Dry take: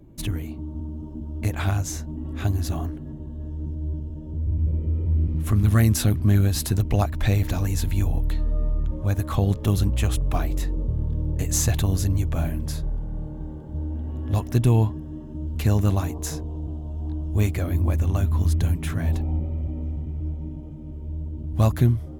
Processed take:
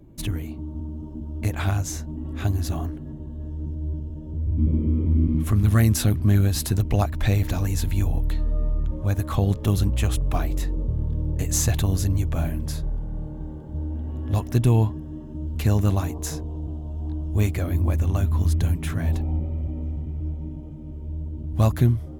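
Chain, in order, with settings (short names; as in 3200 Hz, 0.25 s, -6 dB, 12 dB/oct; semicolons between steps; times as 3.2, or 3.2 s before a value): 4.57–5.43 small resonant body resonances 250/1100/2200/3200 Hz, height 17 dB -> 13 dB, ringing for 35 ms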